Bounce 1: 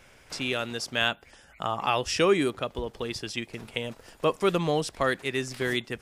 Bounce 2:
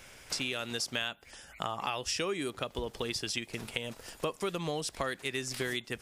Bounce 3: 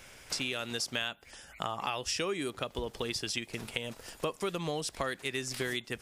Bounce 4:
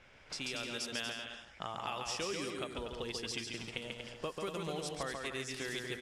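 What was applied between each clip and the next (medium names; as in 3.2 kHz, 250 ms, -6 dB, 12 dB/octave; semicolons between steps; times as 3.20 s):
treble shelf 3 kHz +8 dB; compression 6:1, threshold -31 dBFS, peak gain reduction 14 dB
no audible change
bouncing-ball echo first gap 140 ms, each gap 0.7×, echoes 5; level-controlled noise filter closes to 2.9 kHz, open at -27.5 dBFS; trim -6.5 dB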